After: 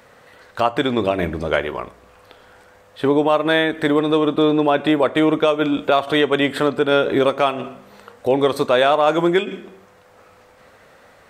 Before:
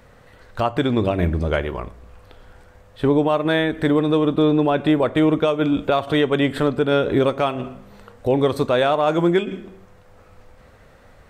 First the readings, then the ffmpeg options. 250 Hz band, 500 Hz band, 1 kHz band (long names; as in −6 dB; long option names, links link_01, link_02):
−0.5 dB, +2.0 dB, +3.5 dB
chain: -af "highpass=frequency=420:poles=1,volume=4.5dB"